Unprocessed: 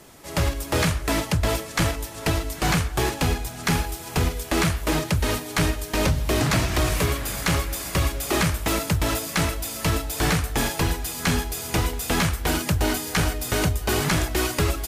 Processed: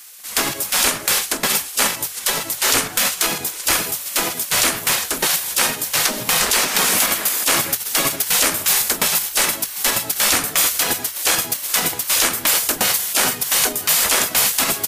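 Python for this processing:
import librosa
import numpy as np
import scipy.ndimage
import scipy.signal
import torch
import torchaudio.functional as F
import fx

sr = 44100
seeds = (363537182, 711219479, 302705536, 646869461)

p1 = fx.spec_gate(x, sr, threshold_db=-15, keep='weak')
p2 = fx.high_shelf(p1, sr, hz=6800.0, db=9.5)
p3 = fx.hum_notches(p2, sr, base_hz=50, count=3)
p4 = fx.level_steps(p3, sr, step_db=9)
p5 = p3 + (p4 * librosa.db_to_amplitude(-2.0))
y = p5 * librosa.db_to_amplitude(4.5)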